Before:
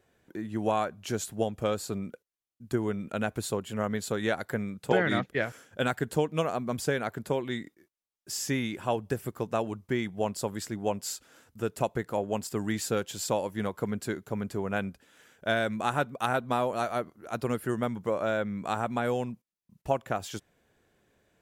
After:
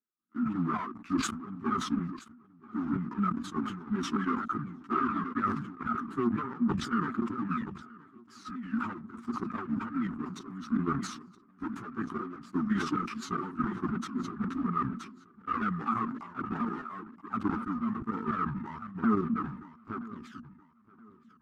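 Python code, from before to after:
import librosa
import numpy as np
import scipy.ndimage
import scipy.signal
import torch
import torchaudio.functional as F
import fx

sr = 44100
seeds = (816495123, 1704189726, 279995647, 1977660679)

p1 = fx.pitch_ramps(x, sr, semitones=-7.5, every_ms=244)
p2 = fx.peak_eq(p1, sr, hz=370.0, db=6.5, octaves=0.61)
p3 = fx.leveller(p2, sr, passes=5)
p4 = fx.double_bandpass(p3, sr, hz=540.0, octaves=2.4)
p5 = fx.level_steps(p4, sr, step_db=13)
p6 = fx.step_gate(p5, sr, bpm=175, pattern='x.xxxxxxx..xxx.', floor_db=-12.0, edge_ms=4.5)
p7 = fx.chorus_voices(p6, sr, voices=4, hz=0.57, base_ms=14, depth_ms=4.4, mix_pct=65)
p8 = p7 + fx.echo_feedback(p7, sr, ms=974, feedback_pct=47, wet_db=-22.5, dry=0)
y = fx.sustainer(p8, sr, db_per_s=65.0)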